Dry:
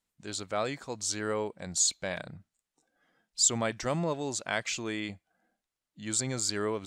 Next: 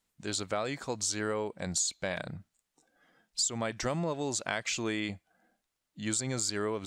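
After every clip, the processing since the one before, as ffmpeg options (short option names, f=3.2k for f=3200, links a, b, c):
-af "acompressor=threshold=-33dB:ratio=6,volume=4.5dB"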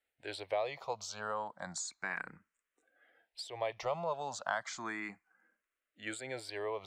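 -filter_complex "[0:a]acrossover=split=510 2500:gain=0.158 1 0.2[a][b][c];[a][b][c]amix=inputs=3:normalize=0,asplit=2[d][e];[e]afreqshift=0.33[f];[d][f]amix=inputs=2:normalize=1,volume=3.5dB"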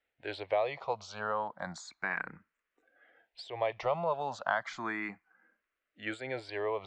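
-af "lowpass=3.2k,volume=4.5dB"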